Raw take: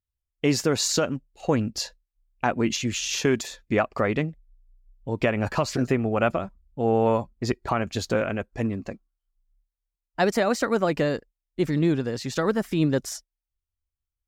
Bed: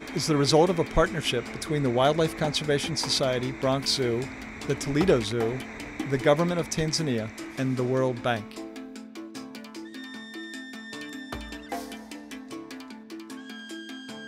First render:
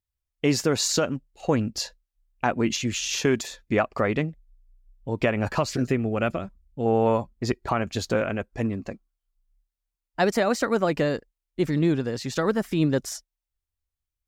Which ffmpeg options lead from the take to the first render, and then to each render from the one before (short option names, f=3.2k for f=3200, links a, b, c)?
-filter_complex "[0:a]asettb=1/sr,asplit=3[a][b][c];[a]atrim=end=5.644[d];[b]atrim=start=5.64:end=6.86,asetpts=PTS-STARTPTS,afade=t=in:d=0.004:c=qsin,afade=t=out:st=1.216:d=0.004:c=qsin,equalizer=f=890:t=o:w=1.3:g=-6.5[e];[c]atrim=start=6.856[f];[d][e]acrossfade=d=0.004:c1=hsin:c2=qsin[g];[g][f]acrossfade=d=0.004:c1=qsin:c2=hsin"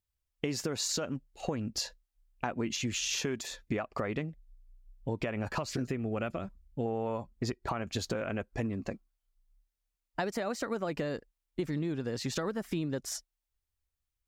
-af "alimiter=limit=-15dB:level=0:latency=1:release=323,acompressor=threshold=-30dB:ratio=6"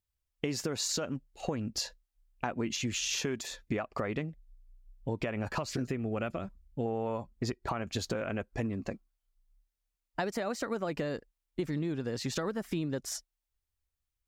-af anull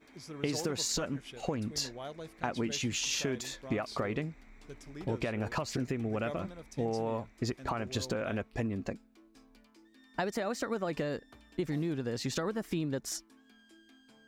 -filter_complex "[1:a]volume=-21dB[a];[0:a][a]amix=inputs=2:normalize=0"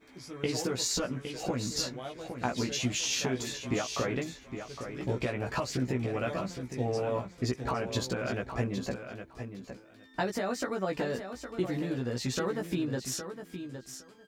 -filter_complex "[0:a]asplit=2[a][b];[b]adelay=16,volume=-2.5dB[c];[a][c]amix=inputs=2:normalize=0,aecho=1:1:812|1624:0.355|0.0568"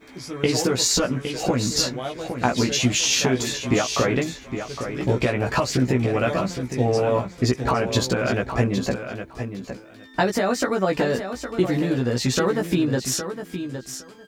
-af "volume=10.5dB"